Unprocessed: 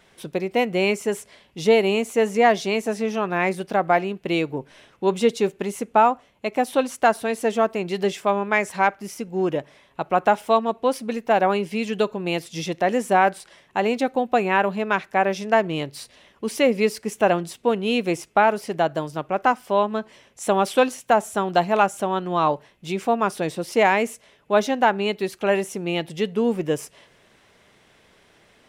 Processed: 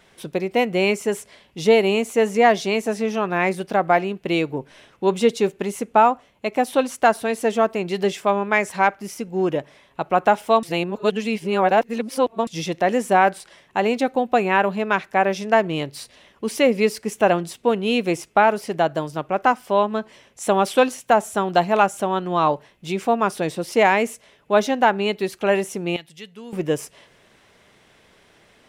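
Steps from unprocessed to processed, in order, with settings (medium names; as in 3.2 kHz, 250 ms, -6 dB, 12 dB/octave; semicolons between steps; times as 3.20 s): 10.63–12.47 s: reverse; 25.96–26.53 s: amplifier tone stack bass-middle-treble 5-5-5; trim +1.5 dB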